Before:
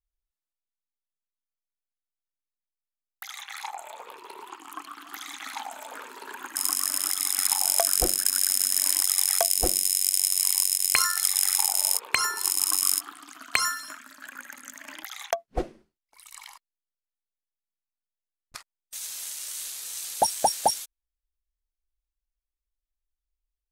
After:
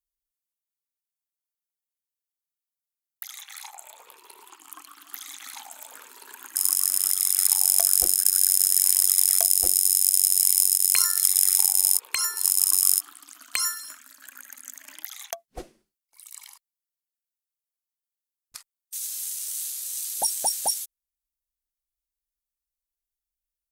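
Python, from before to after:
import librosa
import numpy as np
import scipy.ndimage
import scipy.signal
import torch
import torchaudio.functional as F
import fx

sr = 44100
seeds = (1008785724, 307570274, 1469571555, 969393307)

y = scipy.signal.lfilter([1.0, -0.8], [1.0], x)
y = fx.cheby_harmonics(y, sr, harmonics=(2, 5), levels_db=(-43, -29), full_scale_db=-3.0)
y = F.gain(torch.from_numpy(y), 2.0).numpy()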